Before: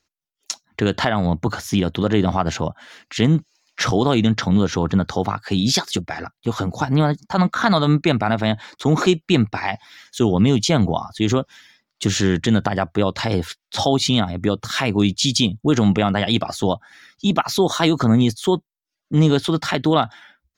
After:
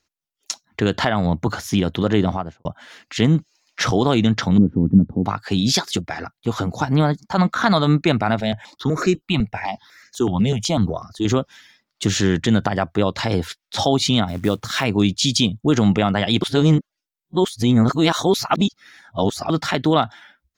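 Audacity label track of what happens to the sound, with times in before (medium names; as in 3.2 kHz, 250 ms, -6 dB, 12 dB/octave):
2.180000	2.650000	studio fade out
4.580000	5.260000	resonant low-pass 250 Hz, resonance Q 2.4
8.400000	11.250000	stepped phaser 8 Hz 300–3300 Hz
14.280000	14.840000	companded quantiser 6-bit
16.420000	19.500000	reverse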